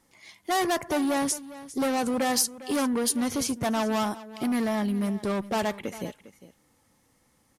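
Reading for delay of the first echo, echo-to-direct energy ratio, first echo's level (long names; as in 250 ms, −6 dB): 403 ms, −16.5 dB, −16.5 dB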